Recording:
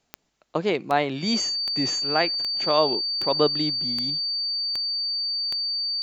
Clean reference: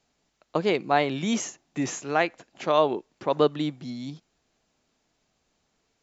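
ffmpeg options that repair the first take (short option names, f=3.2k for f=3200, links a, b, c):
-af "adeclick=t=4,bandreject=f=4.6k:w=30"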